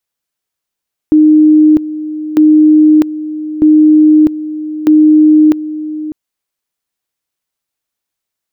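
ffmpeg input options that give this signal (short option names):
-f lavfi -i "aevalsrc='pow(10,(-2.5-14.5*gte(mod(t,1.25),0.65))/20)*sin(2*PI*307*t)':d=5:s=44100"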